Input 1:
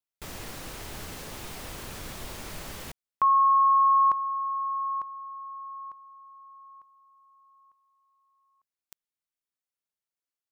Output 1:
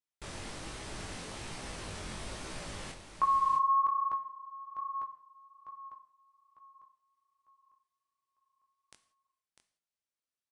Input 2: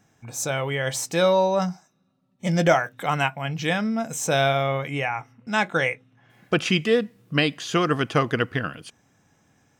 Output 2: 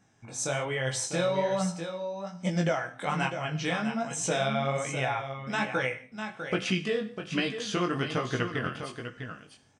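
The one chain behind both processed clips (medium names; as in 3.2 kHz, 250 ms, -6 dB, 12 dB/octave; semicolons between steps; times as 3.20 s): band-stop 6.9 kHz, Q 23; compression, threshold -22 dBFS; on a send: delay 650 ms -8.5 dB; on the sum: gated-style reverb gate 210 ms falling, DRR 10.5 dB; chorus 1.2 Hz, delay 15.5 ms, depth 7.6 ms; resampled via 22.05 kHz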